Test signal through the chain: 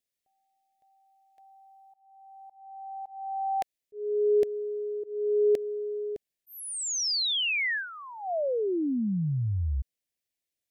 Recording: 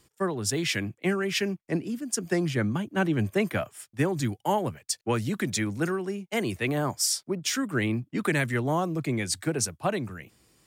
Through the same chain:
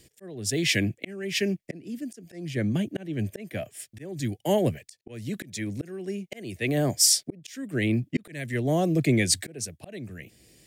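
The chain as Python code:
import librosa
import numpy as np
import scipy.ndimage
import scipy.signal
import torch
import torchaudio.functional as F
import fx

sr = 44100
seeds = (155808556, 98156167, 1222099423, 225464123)

y = fx.band_shelf(x, sr, hz=1100.0, db=-15.0, octaves=1.0)
y = fx.auto_swell(y, sr, attack_ms=647.0)
y = F.gain(torch.from_numpy(y), 6.5).numpy()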